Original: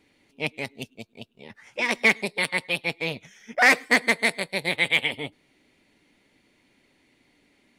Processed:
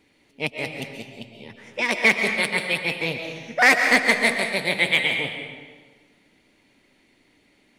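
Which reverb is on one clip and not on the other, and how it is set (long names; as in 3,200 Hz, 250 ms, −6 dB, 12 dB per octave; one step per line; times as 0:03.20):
comb and all-pass reverb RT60 1.4 s, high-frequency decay 0.8×, pre-delay 95 ms, DRR 4 dB
level +1.5 dB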